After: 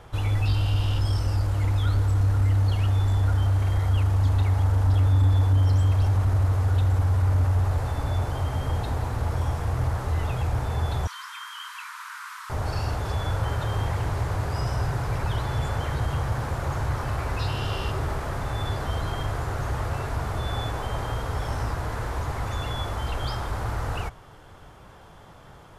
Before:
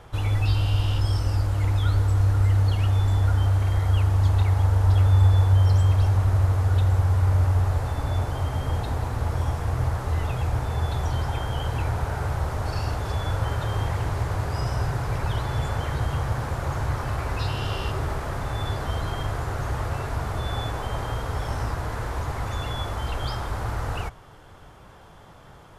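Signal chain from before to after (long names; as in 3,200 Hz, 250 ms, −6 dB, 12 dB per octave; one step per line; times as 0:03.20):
0:11.07–0:12.50: Butterworth high-pass 1,000 Hz 96 dB per octave
soft clipping −13.5 dBFS, distortion −20 dB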